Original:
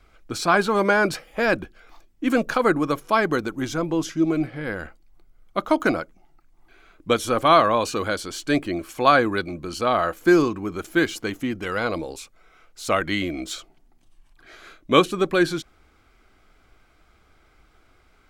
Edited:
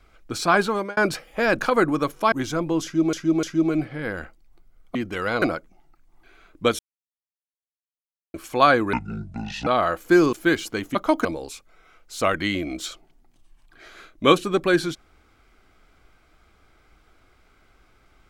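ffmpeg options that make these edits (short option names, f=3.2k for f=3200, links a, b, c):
-filter_complex "[0:a]asplit=15[a][b][c][d][e][f][g][h][i][j][k][l][m][n][o];[a]atrim=end=0.97,asetpts=PTS-STARTPTS,afade=t=out:st=0.63:d=0.34[p];[b]atrim=start=0.97:end=1.592,asetpts=PTS-STARTPTS,afade=t=in:d=0.004:c=hsin[q];[c]atrim=start=2.468:end=3.202[r];[d]atrim=start=3.538:end=4.352[s];[e]atrim=start=4.048:end=4.352[t];[f]atrim=start=4.048:end=5.572[u];[g]atrim=start=11.448:end=11.922[v];[h]atrim=start=5.868:end=7.24,asetpts=PTS-STARTPTS,afade=t=out:st=1.368:d=0.004:c=hsin[w];[i]atrim=start=7.24:end=8.79,asetpts=PTS-STARTPTS,volume=0[x];[j]atrim=start=8.79:end=9.384,asetpts=PTS-STARTPTS,afade=t=in:d=0.004:c=hsin[y];[k]atrim=start=9.38:end=9.83,asetpts=PTS-STARTPTS,asetrate=26901,aresample=44100[z];[l]atrim=start=9.826:end=10.492[aa];[m]atrim=start=10.828:end=11.452[ab];[n]atrim=start=5.568:end=5.872[ac];[o]atrim=start=11.918[ad];[p][q]concat=n=2:v=0:a=1[ae];[ae][r]acrossfade=d=0.004:c1=hsin:c2=hsin[af];[af][s]acrossfade=d=0.004:c1=hsin:c2=hsin[ag];[ag][t]acrossfade=d=0.004:c1=hsin:c2=hsin[ah];[ah][u]acrossfade=d=0.004:c1=hsin:c2=hsin[ai];[ai][v]acrossfade=d=0.004:c1=hsin:c2=hsin[aj];[w][x][y]concat=n=3:v=0:a=1[ak];[aj][ak]acrossfade=d=0.004:c1=hsin:c2=hsin[al];[al][z]acrossfade=d=0.004:c1=hsin:c2=hsin[am];[am][aa]acrossfade=d=0.004:c1=hsin:c2=hsin[an];[an][ab]acrossfade=d=0.004:c1=hsin:c2=hsin[ao];[ao][ac]acrossfade=d=0.004:c1=hsin:c2=hsin[ap];[ap][ad]acrossfade=d=0.004:c1=hsin:c2=hsin"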